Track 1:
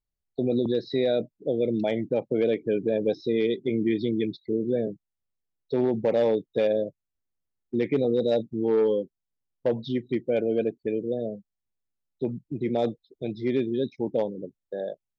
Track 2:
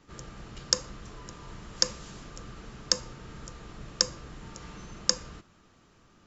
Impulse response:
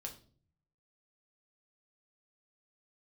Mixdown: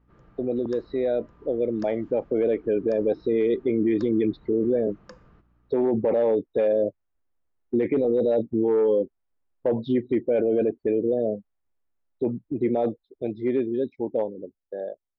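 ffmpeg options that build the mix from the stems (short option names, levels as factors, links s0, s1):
-filter_complex "[0:a]dynaudnorm=f=360:g=17:m=3.55,equalizer=f=150:t=o:w=0.83:g=-11.5,volume=1[s0];[1:a]aeval=exprs='val(0)+0.00224*(sin(2*PI*60*n/s)+sin(2*PI*2*60*n/s)/2+sin(2*PI*3*60*n/s)/3+sin(2*PI*4*60*n/s)/4+sin(2*PI*5*60*n/s)/5)':c=same,volume=0.316[s1];[s0][s1]amix=inputs=2:normalize=0,lowpass=1600,alimiter=limit=0.178:level=0:latency=1:release=11"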